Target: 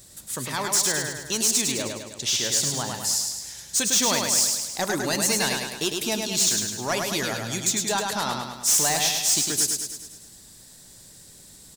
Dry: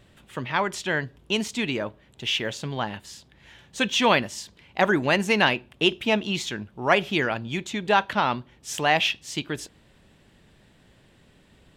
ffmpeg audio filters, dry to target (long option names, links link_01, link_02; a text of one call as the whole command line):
ffmpeg -i in.wav -filter_complex "[0:a]asettb=1/sr,asplit=3[link_01][link_02][link_03];[link_01]atrim=end=1.624[link_04];[link_02]atrim=start=1.62:end=2.43,asetpts=PTS-STARTPTS,afade=type=in:duration=0.004:curve=qsin,afade=type=out:start_time=0.806:duration=0.004:curve=qsin,lowpass=7900[link_05];[link_03]atrim=start=2.426[link_06];[link_04][link_05]acrossfade=duration=0.004:curve1=hsin:curve2=qsin[link_07];[link_07][link_06]acrossfade=duration=0.004:curve1=qsin:curve2=hsin,asplit=2[link_08][link_09];[link_09]acompressor=threshold=-29dB:ratio=6,volume=1dB[link_10];[link_08][link_10]amix=inputs=2:normalize=0,aexciter=amount=13.8:drive=5.3:freq=4400,asoftclip=type=tanh:threshold=-9dB,aecho=1:1:104|208|312|416|520|624|728:0.631|0.347|0.191|0.105|0.0577|0.0318|0.0175,volume=-7.5dB" out.wav